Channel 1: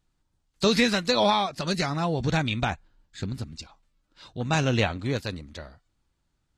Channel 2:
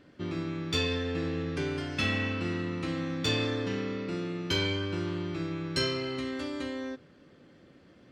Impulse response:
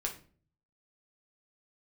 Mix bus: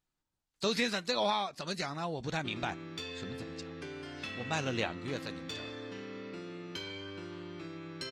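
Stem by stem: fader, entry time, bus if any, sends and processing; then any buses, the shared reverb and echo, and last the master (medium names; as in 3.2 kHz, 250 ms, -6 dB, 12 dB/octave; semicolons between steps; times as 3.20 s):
-8.5 dB, 0.00 s, send -23 dB, none
-2.5 dB, 2.25 s, no send, compression, threshold -35 dBFS, peak gain reduction 10.5 dB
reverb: on, RT60 0.45 s, pre-delay 5 ms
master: bass shelf 170 Hz -10.5 dB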